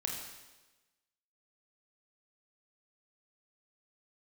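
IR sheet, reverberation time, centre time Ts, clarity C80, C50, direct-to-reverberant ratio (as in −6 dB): 1.2 s, 54 ms, 5.0 dB, 2.5 dB, −0.5 dB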